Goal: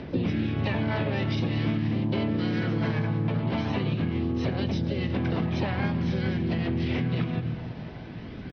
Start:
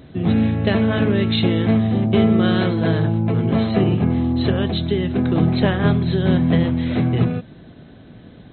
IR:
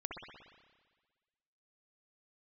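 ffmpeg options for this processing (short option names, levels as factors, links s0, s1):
-filter_complex "[0:a]aphaser=in_gain=1:out_gain=1:delay=1.7:decay=0.35:speed=0.45:type=triangular,asplit=2[s0][s1];[1:a]atrim=start_sample=2205,lowshelf=f=120:g=11,adelay=82[s2];[s1][s2]afir=irnorm=-1:irlink=0,volume=0.141[s3];[s0][s3]amix=inputs=2:normalize=0,acrossover=split=120|1300[s4][s5][s6];[s4]acompressor=threshold=0.0562:ratio=4[s7];[s5]acompressor=threshold=0.0891:ratio=4[s8];[s6]acompressor=threshold=0.0224:ratio=4[s9];[s7][s8][s9]amix=inputs=3:normalize=0,lowpass=f=2500:t=q:w=1.7,asplit=3[s10][s11][s12];[s11]asetrate=58866,aresample=44100,atempo=0.749154,volume=0.631[s13];[s12]asetrate=66075,aresample=44100,atempo=0.66742,volume=0.355[s14];[s10][s13][s14]amix=inputs=3:normalize=0,acompressor=threshold=0.0631:ratio=6,asplit=2[s15][s16];[s16]aecho=0:1:291:0.141[s17];[s15][s17]amix=inputs=2:normalize=0"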